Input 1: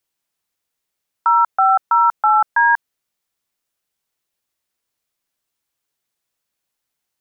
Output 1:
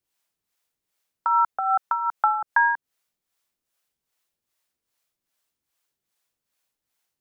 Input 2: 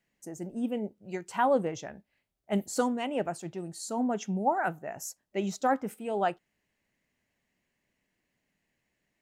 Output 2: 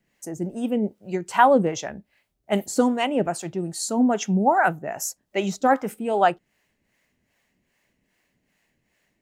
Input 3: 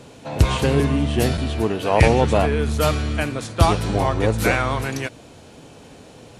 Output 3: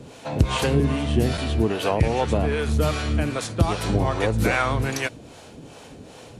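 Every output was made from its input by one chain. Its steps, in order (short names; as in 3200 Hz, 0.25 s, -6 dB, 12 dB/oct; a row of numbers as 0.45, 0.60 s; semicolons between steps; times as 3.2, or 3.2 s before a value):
compressor 10:1, threshold -17 dBFS; harmonic tremolo 2.5 Hz, depth 70%, crossover 460 Hz; match loudness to -23 LUFS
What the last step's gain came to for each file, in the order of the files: +2.5, +11.5, +4.0 dB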